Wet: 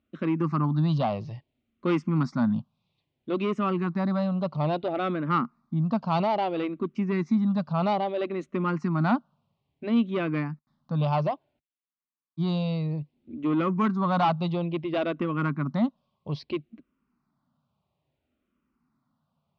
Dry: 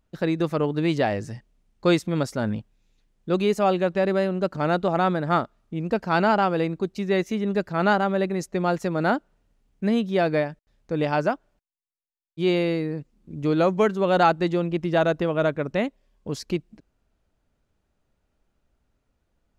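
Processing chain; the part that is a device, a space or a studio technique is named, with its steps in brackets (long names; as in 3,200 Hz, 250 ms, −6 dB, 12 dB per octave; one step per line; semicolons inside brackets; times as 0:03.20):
barber-pole phaser into a guitar amplifier (frequency shifter mixed with the dry sound −0.6 Hz; soft clipping −19.5 dBFS, distortion −14 dB; loudspeaker in its box 110–4,400 Hz, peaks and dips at 150 Hz +8 dB, 240 Hz +9 dB, 460 Hz −8 dB, 1,100 Hz +9 dB, 1,700 Hz −7 dB)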